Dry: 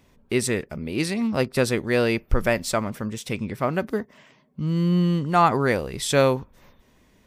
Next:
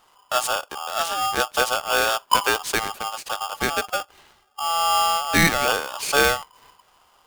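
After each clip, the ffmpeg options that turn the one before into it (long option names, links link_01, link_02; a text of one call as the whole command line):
ffmpeg -i in.wav -af "aeval=exprs='val(0)*sgn(sin(2*PI*1000*n/s))':channel_layout=same" out.wav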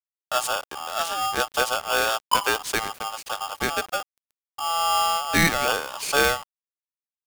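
ffmpeg -i in.wav -af "aeval=exprs='val(0)*gte(abs(val(0)),0.0106)':channel_layout=same,volume=-2dB" out.wav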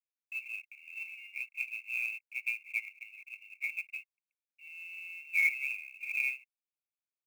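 ffmpeg -i in.wav -af "asuperpass=centerf=2400:order=20:qfactor=4.1,acrusher=bits=5:mode=log:mix=0:aa=0.000001" out.wav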